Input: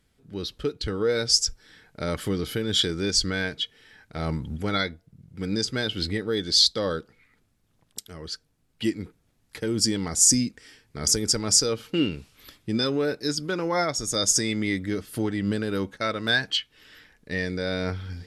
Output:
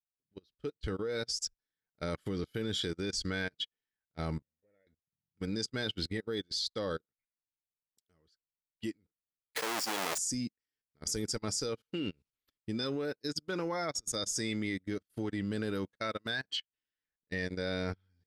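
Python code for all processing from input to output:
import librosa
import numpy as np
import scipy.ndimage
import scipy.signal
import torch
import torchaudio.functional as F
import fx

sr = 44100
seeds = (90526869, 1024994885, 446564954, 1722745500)

y = fx.chain(x, sr, fx.crossing_spikes(level_db=-20.5),
    fx.formant_cascade(vowel='e'),
    fx.air_absorb(metres=380.0), at=(4.42, 4.87))
y = fx.chain(y, sr, fx.halfwave_hold(),
    fx.highpass(hz=630.0, slope=12),
    fx.pre_swell(db_per_s=26.0), at=(9.56, 10.18))
y = fx.level_steps(y, sr, step_db=15)
y = fx.upward_expand(y, sr, threshold_db=-51.0, expansion=2.5)
y = y * 10.0 ** (-2.5 / 20.0)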